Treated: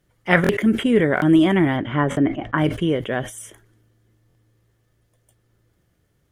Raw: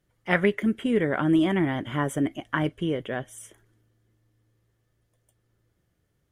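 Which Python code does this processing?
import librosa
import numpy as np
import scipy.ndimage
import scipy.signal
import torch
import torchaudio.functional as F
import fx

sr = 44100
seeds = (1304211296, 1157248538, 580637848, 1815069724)

y = fx.lowpass(x, sr, hz=fx.line((1.76, 3400.0), (2.57, 1500.0)), slope=12, at=(1.76, 2.57), fade=0.02)
y = fx.buffer_glitch(y, sr, at_s=(0.42, 1.15, 2.1, 4.28), block=1024, repeats=2)
y = fx.sustainer(y, sr, db_per_s=130.0)
y = y * librosa.db_to_amplitude(6.5)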